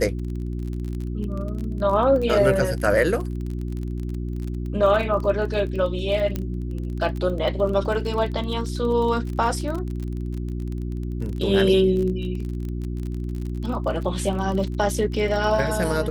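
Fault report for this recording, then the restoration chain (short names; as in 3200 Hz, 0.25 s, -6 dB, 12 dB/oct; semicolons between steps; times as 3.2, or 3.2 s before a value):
crackle 30/s -29 dBFS
hum 60 Hz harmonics 6 -28 dBFS
6.36 pop -13 dBFS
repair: de-click; de-hum 60 Hz, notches 6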